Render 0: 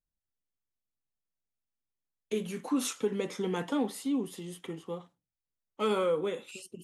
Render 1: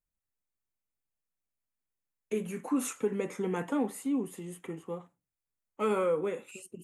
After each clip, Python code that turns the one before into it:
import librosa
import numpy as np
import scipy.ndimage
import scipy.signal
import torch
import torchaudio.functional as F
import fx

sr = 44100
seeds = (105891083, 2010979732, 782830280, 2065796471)

y = fx.band_shelf(x, sr, hz=4200.0, db=-11.0, octaves=1.1)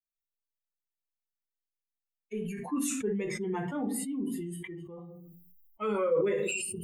y = fx.bin_expand(x, sr, power=2.0)
y = fx.room_shoebox(y, sr, seeds[0], volume_m3=140.0, walls='furnished', distance_m=0.98)
y = fx.sustainer(y, sr, db_per_s=23.0)
y = F.gain(torch.from_numpy(y), -1.5).numpy()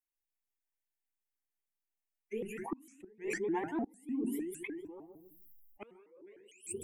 y = fx.gate_flip(x, sr, shuts_db=-24.0, range_db=-27)
y = fx.fixed_phaser(y, sr, hz=830.0, stages=8)
y = fx.vibrato_shape(y, sr, shape='saw_up', rate_hz=6.6, depth_cents=250.0)
y = F.gain(torch.from_numpy(y), 1.0).numpy()